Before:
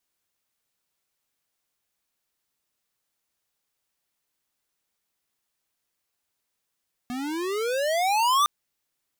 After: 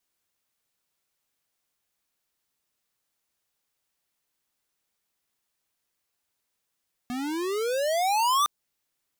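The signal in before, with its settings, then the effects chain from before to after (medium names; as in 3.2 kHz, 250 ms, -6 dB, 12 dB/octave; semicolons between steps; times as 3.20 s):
gliding synth tone square, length 1.36 s, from 241 Hz, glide +28 st, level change +12 dB, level -19.5 dB
dynamic bell 2 kHz, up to -5 dB, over -36 dBFS, Q 1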